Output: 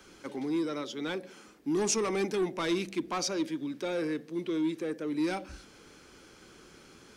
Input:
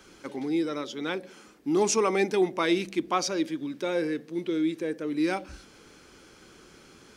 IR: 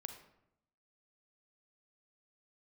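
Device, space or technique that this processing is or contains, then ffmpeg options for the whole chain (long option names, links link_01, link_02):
one-band saturation: -filter_complex "[0:a]acrossover=split=260|4400[link_01][link_02][link_03];[link_02]asoftclip=type=tanh:threshold=-27dB[link_04];[link_01][link_04][link_03]amix=inputs=3:normalize=0,volume=-1.5dB"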